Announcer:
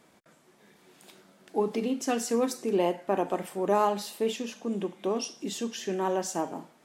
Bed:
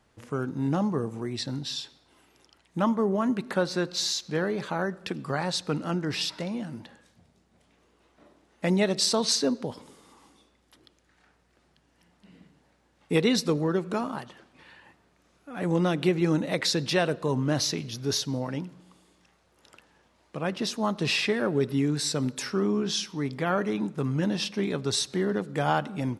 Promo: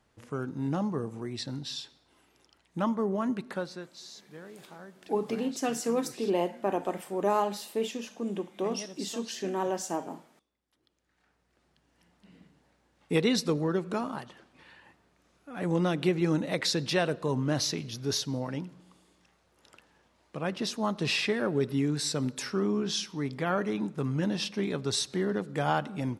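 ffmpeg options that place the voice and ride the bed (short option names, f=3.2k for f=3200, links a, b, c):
-filter_complex "[0:a]adelay=3550,volume=-2dB[a];[1:a]volume=12.5dB,afade=t=out:st=3.33:d=0.56:silence=0.177828,afade=t=in:st=10.69:d=1.33:silence=0.149624[b];[a][b]amix=inputs=2:normalize=0"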